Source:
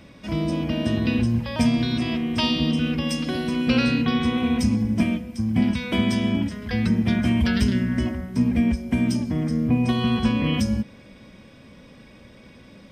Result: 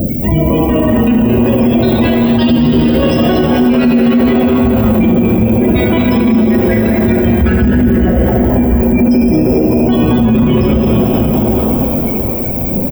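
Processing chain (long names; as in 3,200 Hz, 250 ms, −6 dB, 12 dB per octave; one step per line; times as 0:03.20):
reverb reduction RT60 0.58 s
low-pass filter 1,200 Hz 6 dB per octave
reverb reduction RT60 0.61 s
reversed playback
downward compressor 10 to 1, threshold −30 dBFS, peak gain reduction 14.5 dB
reversed playback
phase shifter 0.39 Hz, delay 4.7 ms, feedback 56%
background noise violet −45 dBFS
spectral peaks only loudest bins 64
echo with shifted repeats 220 ms, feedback 47%, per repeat +140 Hz, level −8 dB
dense smooth reverb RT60 4.9 s, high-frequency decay 0.75×, DRR −1.5 dB
boost into a limiter +29 dB
level −2 dB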